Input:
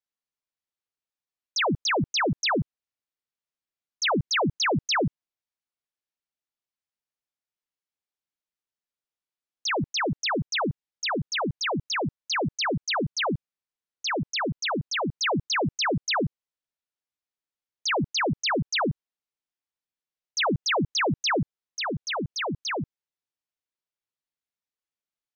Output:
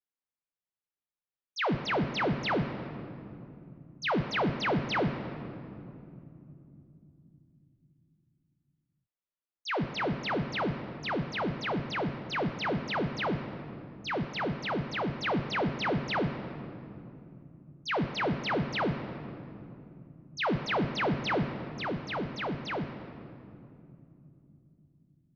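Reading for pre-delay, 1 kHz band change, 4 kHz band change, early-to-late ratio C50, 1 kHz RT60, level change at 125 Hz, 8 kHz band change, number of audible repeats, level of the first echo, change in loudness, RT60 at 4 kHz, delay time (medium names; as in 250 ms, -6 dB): 5 ms, -4.0 dB, -9.5 dB, 8.5 dB, 2.4 s, -2.0 dB, no reading, no echo, no echo, -5.5 dB, 1.6 s, no echo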